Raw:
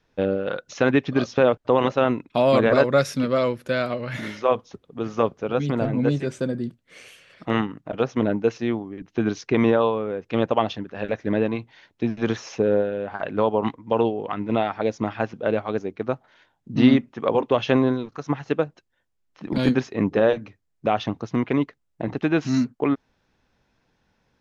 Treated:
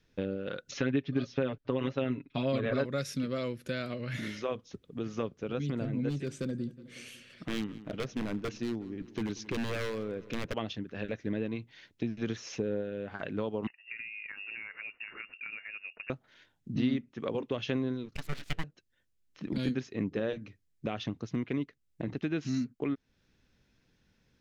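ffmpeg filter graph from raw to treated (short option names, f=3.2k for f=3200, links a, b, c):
-filter_complex "[0:a]asettb=1/sr,asplit=3[a][b][c];[a]atrim=end=0.714[d];[b]atrim=start=0.71:end=2.86,asetpts=PTS-STARTPTS,afade=t=in:d=0.004:c=qsin,afade=t=out:st=2.146:d=0.004:c=qsin,lowpass=4.4k,aecho=1:1:7.3:0.81,atrim=end_sample=94815[e];[c]atrim=start=2.856[f];[d][e]acrossfade=d=0.004:c1=hsin:c2=qsin[g];[g][f]acrossfade=d=0.004:c1=qsin:c2=hsin,asettb=1/sr,asplit=3[h][i][j];[h]atrim=end=6.094[k];[i]atrim=start=6.09:end=10.54,asetpts=PTS-STARTPTS,afade=t=in:d=0.004:c=qsin,afade=t=out:st=4.446:d=0.004:c=qsin,equalizer=f=2k:w=5.2:g=-2.5,aeval=exprs='0.133*(abs(mod(val(0)/0.133+3,4)-2)-1)':c=same,asplit=2[l][m];[m]adelay=183,lowpass=f=4.4k:p=1,volume=-20dB,asplit=2[n][o];[o]adelay=183,lowpass=f=4.4k:p=1,volume=0.49,asplit=2[p][q];[q]adelay=183,lowpass=f=4.4k:p=1,volume=0.49,asplit=2[r][s];[s]adelay=183,lowpass=f=4.4k:p=1,volume=0.49[t];[l][n][p][r][t]amix=inputs=5:normalize=0,atrim=end_sample=196245[u];[j]atrim=start=10.536[v];[k][u]acrossfade=d=0.004:c1=hsin:c2=qsin[w];[w][v]acrossfade=d=0.004:c1=qsin:c2=hsin,asettb=1/sr,asplit=3[x][y][z];[x]atrim=end=13.674[aa];[y]atrim=start=13.67:end=16.1,asetpts=PTS-STARTPTS,afade=t=in:d=0.004:c=qsin,afade=t=out:st=2.426:d=0.004:c=qsin,equalizer=f=220:w=0.35:g=-10.5,acompressor=threshold=-35dB:ratio=6:attack=3.2:release=140:knee=1:detection=peak,lowpass=f=2.5k:t=q:w=0.5098,lowpass=f=2.5k:t=q:w=0.6013,lowpass=f=2.5k:t=q:w=0.9,lowpass=f=2.5k:t=q:w=2.563,afreqshift=-2900[ab];[z]atrim=start=16.096[ac];[aa][ab]acrossfade=d=0.004:c1=hsin:c2=qsin[ad];[ad][ac]acrossfade=d=0.004:c1=qsin:c2=hsin,asettb=1/sr,asplit=3[ae][af][ag];[ae]atrim=end=18.154[ah];[af]atrim=start=18.15:end=18.64,asetpts=PTS-STARTPTS,afade=t=in:d=0.004:c=qsin,afade=t=out:st=0.486:d=0.004:c=qsin,highpass=f=79:w=0.5412,highpass=f=79:w=1.3066,equalizer=f=2k:w=0.76:g=9.5,aeval=exprs='abs(val(0))':c=same[ai];[ag]atrim=start=18.636[aj];[ah][ai]acrossfade=d=0.004:c1=hsin:c2=qsin[ak];[ak][aj]acrossfade=d=0.004:c1=qsin:c2=hsin,equalizer=f=850:t=o:w=1.4:g=-12,acompressor=threshold=-36dB:ratio=2"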